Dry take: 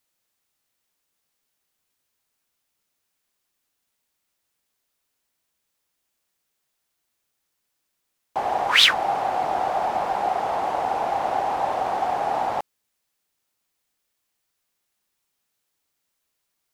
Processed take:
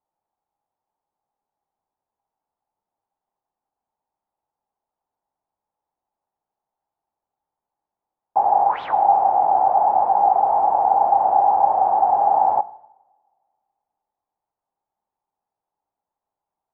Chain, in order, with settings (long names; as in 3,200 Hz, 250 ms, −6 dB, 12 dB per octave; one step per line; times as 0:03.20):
low-pass with resonance 840 Hz, resonance Q 6.5
coupled-rooms reverb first 0.79 s, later 2.3 s, from −23 dB, DRR 15 dB
level −5.5 dB